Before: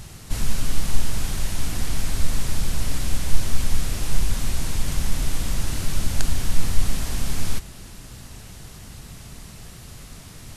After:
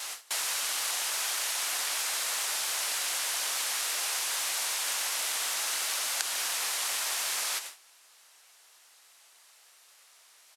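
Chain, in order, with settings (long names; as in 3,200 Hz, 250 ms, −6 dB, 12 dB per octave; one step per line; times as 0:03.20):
pitch-shifted copies added −4 semitones −7 dB, +4 semitones −15 dB
Bessel high-pass filter 930 Hz, order 4
downward compressor 2.5 to 1, threshold −40 dBFS, peak gain reduction 10 dB
noise gate with hold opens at −34 dBFS
flutter between parallel walls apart 11.3 metres, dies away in 0.24 s
level +9 dB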